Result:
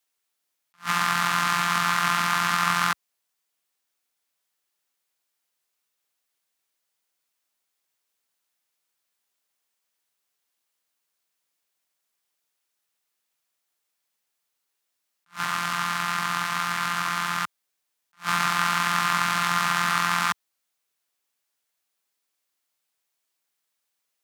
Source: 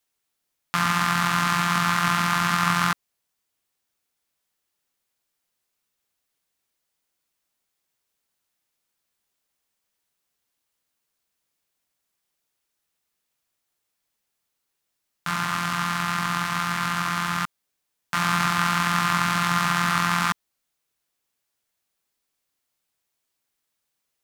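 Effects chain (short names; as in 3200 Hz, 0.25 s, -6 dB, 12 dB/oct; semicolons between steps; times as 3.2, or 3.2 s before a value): HPF 75 Hz; low shelf 310 Hz -10 dB; attack slew limiter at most 330 dB/s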